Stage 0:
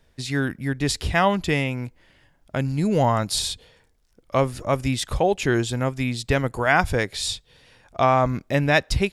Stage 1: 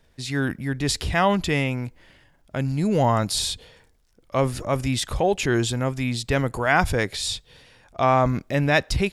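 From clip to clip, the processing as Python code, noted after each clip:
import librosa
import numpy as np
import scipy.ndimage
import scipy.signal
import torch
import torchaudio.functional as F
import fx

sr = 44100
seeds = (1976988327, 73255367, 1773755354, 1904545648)

y = fx.transient(x, sr, attack_db=-3, sustain_db=4)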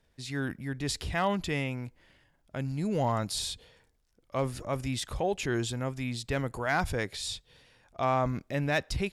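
y = fx.clip_asym(x, sr, top_db=-10.5, bottom_db=-9.5)
y = F.gain(torch.from_numpy(y), -8.5).numpy()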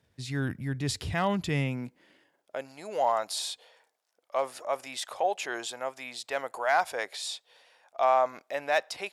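y = fx.filter_sweep_highpass(x, sr, from_hz=100.0, to_hz=680.0, start_s=1.4, end_s=2.74, q=2.0)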